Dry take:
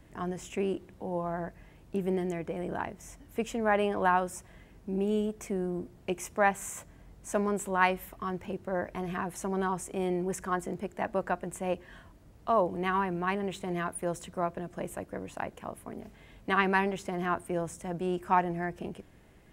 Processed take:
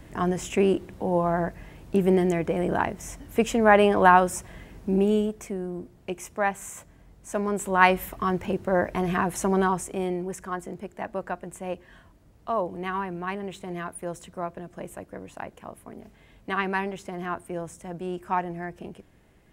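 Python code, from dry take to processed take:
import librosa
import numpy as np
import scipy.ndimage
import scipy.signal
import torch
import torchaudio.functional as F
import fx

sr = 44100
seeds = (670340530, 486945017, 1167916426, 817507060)

y = fx.gain(x, sr, db=fx.line((4.92, 9.5), (5.58, 0.0), (7.29, 0.0), (7.97, 9.0), (9.53, 9.0), (10.34, -1.0)))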